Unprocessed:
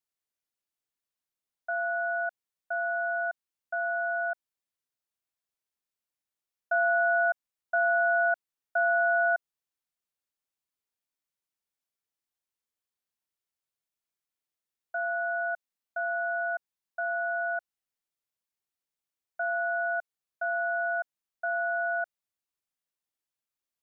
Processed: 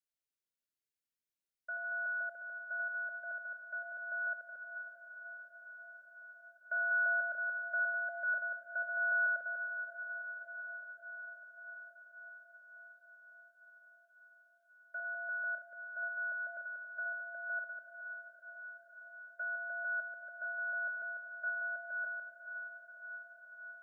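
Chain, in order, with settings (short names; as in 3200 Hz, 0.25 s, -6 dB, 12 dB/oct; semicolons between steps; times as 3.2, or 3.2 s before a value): reverse delay 0.147 s, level -7.5 dB; elliptic band-stop 610–1400 Hz, stop band 40 dB; diffused feedback echo 0.493 s, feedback 74%, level -8.5 dB; gain -6.5 dB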